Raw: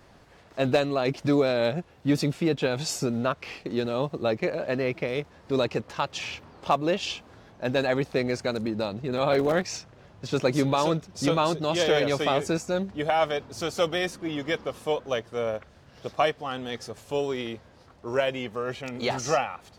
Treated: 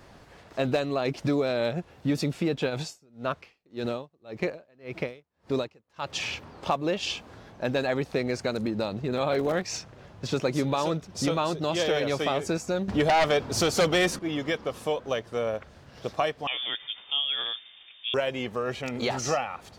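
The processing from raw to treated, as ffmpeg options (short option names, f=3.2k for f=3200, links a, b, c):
-filter_complex "[0:a]asplit=3[a][b][c];[a]afade=t=out:st=2.69:d=0.02[d];[b]aeval=exprs='val(0)*pow(10,-37*(0.5-0.5*cos(2*PI*1.8*n/s))/20)':c=same,afade=t=in:st=2.69:d=0.02,afade=t=out:st=6.08:d=0.02[e];[c]afade=t=in:st=6.08:d=0.02[f];[d][e][f]amix=inputs=3:normalize=0,asettb=1/sr,asplit=3[g][h][i];[g]atrim=end=12.884[j];[h]atrim=start=12.88:end=14.19,asetpts=PTS-STARTPTS,afade=t=in:d=0.004:c=qsin,afade=t=out:st=1.306:d=0.004:c=qsin,aeval=exprs='0.266*sin(PI/2*2.51*val(0)/0.266)':c=same[k];[i]atrim=start=14.186[l];[j][k]acrossfade=d=0.004:c1=hsin:c2=qsin[m];[m][l]acrossfade=d=0.004:c1=qsin:c2=hsin,asettb=1/sr,asplit=3[n][o][p];[n]atrim=end=16.474[q];[o]atrim=start=16.47:end=18.14,asetpts=PTS-STARTPTS,afade=t=in:d=0.004:c=qsin,afade=t=out:st=1.666:d=0.004:c=qsin,lowpass=f=3.1k:t=q:w=0.5098,lowpass=f=3.1k:t=q:w=0.6013,lowpass=f=3.1k:t=q:w=0.9,lowpass=f=3.1k:t=q:w=2.563,afreqshift=-3700[r];[p]atrim=start=18.136[s];[q][r]acrossfade=d=0.004:c1=hsin:c2=qsin[t];[t][s]acrossfade=d=0.004:c1=qsin:c2=hsin,acompressor=threshold=-30dB:ratio=2,volume=3dB"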